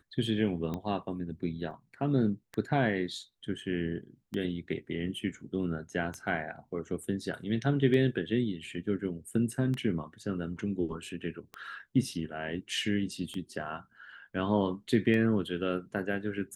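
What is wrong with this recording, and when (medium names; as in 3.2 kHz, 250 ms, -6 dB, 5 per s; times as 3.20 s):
tick 33 1/3 rpm -23 dBFS
1.71 s: dropout 2.4 ms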